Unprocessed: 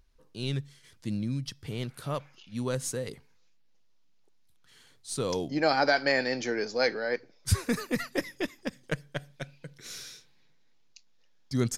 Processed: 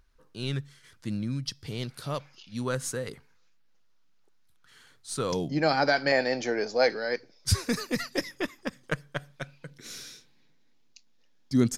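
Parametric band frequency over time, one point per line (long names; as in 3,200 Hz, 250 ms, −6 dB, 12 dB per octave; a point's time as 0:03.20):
parametric band +7.5 dB 0.79 octaves
1,400 Hz
from 0:01.47 4,800 Hz
from 0:02.61 1,400 Hz
from 0:05.32 160 Hz
from 0:06.12 680 Hz
from 0:06.90 5,100 Hz
from 0:08.31 1,200 Hz
from 0:09.70 260 Hz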